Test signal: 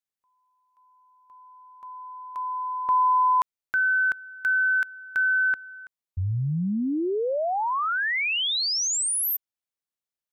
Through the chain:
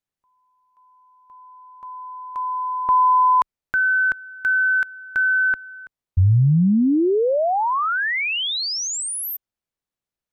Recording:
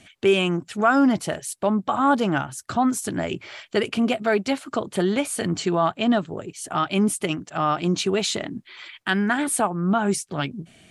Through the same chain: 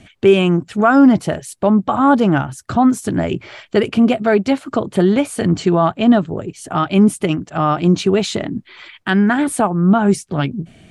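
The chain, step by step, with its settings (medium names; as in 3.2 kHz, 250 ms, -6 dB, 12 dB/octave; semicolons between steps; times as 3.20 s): tilt EQ -2 dB/octave; trim +5 dB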